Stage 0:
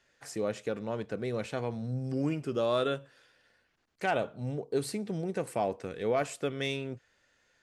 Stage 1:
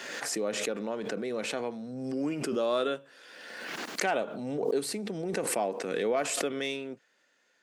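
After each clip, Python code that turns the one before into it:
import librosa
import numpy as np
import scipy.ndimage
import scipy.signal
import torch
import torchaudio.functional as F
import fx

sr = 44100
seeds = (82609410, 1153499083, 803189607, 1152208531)

y = scipy.signal.sosfilt(scipy.signal.butter(4, 200.0, 'highpass', fs=sr, output='sos'), x)
y = fx.pre_swell(y, sr, db_per_s=31.0)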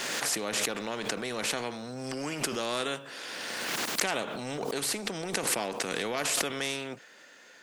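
y = fx.spectral_comp(x, sr, ratio=2.0)
y = y * 10.0 ** (5.0 / 20.0)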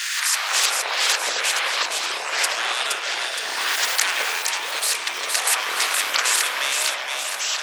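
y = scipy.signal.sosfilt(scipy.signal.butter(4, 1400.0, 'highpass', fs=sr, output='sos'), x)
y = fx.echo_split(y, sr, split_hz=2400.0, low_ms=160, high_ms=468, feedback_pct=52, wet_db=-4)
y = fx.echo_pitch(y, sr, ms=173, semitones=-7, count=3, db_per_echo=-3.0)
y = y * 10.0 ** (8.5 / 20.0)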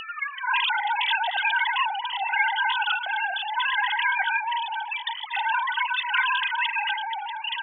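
y = fx.sine_speech(x, sr)
y = y + 10.0 ** (-17.0 / 20.0) * np.pad(y, (int(232 * sr / 1000.0), 0))[:len(y)]
y = fx.noise_reduce_blind(y, sr, reduce_db=17)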